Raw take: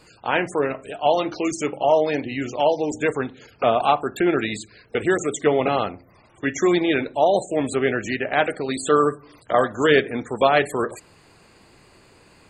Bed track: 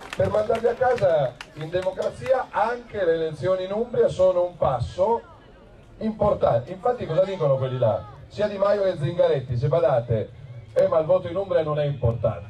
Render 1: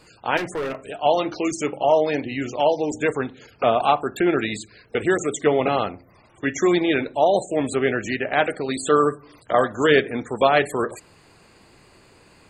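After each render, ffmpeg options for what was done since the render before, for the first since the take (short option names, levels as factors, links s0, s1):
-filter_complex "[0:a]asettb=1/sr,asplit=3[s0][s1][s2];[s0]atrim=end=0.374[s3];[s1]atrim=start=0.37:end=0.78,asetpts=PTS-STARTPTS,afade=t=in:d=0.004:c=qsin,afade=t=out:st=0.406:d=0.004:c=qsin,asoftclip=type=hard:threshold=0.0708[s4];[s2]atrim=start=0.776[s5];[s3][s4]acrossfade=d=0.004:c1=hsin:c2=qsin[s6];[s6][s5]acrossfade=d=0.004:c1=qsin:c2=hsin"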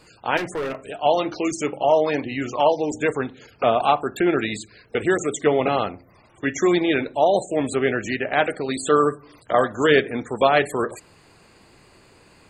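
-filter_complex "[0:a]asettb=1/sr,asplit=3[s0][s1][s2];[s0]atrim=end=2.044[s3];[s1]atrim=start=2.04:end=2.72,asetpts=PTS-STARTPTS,afade=t=in:d=0.004:c=qsin,afade=t=out:st=0.676:d=0.004:c=qsin,equalizer=f=1100:t=o:w=0.37:g=12[s4];[s2]atrim=start=2.716[s5];[s3][s4]acrossfade=d=0.004:c1=hsin:c2=qsin[s6];[s6][s5]acrossfade=d=0.004:c1=qsin:c2=hsin"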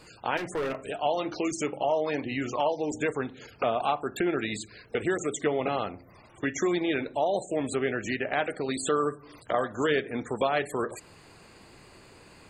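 -af "acompressor=threshold=0.0316:ratio=2"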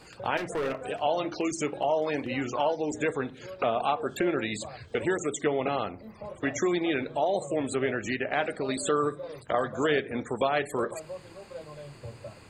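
-filter_complex "[1:a]volume=0.0944[s0];[0:a][s0]amix=inputs=2:normalize=0"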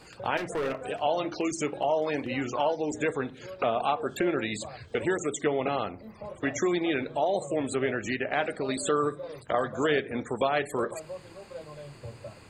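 -af anull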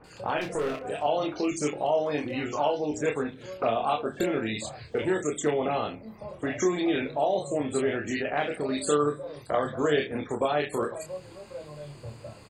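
-filter_complex "[0:a]asplit=2[s0][s1];[s1]adelay=27,volume=0.531[s2];[s0][s2]amix=inputs=2:normalize=0,acrossover=split=1800[s3][s4];[s4]adelay=40[s5];[s3][s5]amix=inputs=2:normalize=0"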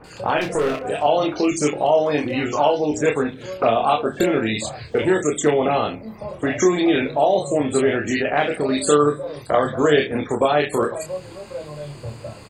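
-af "volume=2.66"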